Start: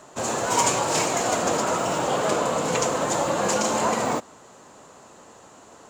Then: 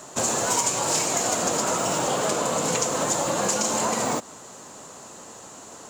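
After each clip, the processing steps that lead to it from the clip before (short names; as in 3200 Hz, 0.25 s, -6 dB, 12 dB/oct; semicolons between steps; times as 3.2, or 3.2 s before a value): tone controls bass +5 dB, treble +8 dB; compressor, threshold -24 dBFS, peak gain reduction 11.5 dB; low shelf 120 Hz -8.5 dB; gain +3.5 dB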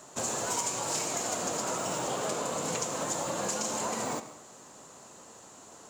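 reverb RT60 0.70 s, pre-delay 67 ms, DRR 11 dB; gain -8.5 dB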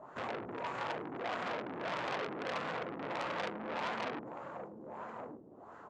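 LFO low-pass sine 1.6 Hz 300–1600 Hz; echo 1.162 s -11.5 dB; core saturation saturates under 2800 Hz; gain -2.5 dB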